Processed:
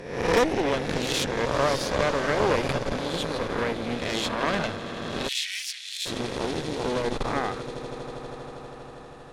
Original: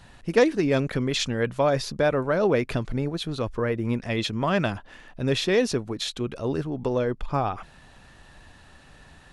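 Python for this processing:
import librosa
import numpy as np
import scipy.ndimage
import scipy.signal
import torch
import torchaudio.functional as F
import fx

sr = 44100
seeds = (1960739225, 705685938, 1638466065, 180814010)

p1 = fx.spec_swells(x, sr, rise_s=0.94)
p2 = p1 + fx.echo_swell(p1, sr, ms=80, loudest=8, wet_db=-18.0, dry=0)
p3 = fx.cheby_harmonics(p2, sr, harmonics=(6,), levels_db=(-12,), full_scale_db=-4.5)
p4 = fx.steep_highpass(p3, sr, hz=2100.0, slope=36, at=(5.27, 6.05), fade=0.02)
y = p4 * librosa.db_to_amplitude(-5.5)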